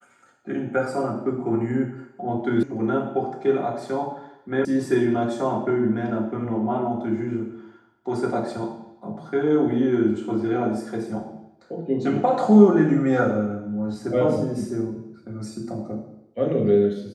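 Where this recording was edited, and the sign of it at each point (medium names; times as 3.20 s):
2.63 s: sound stops dead
4.65 s: sound stops dead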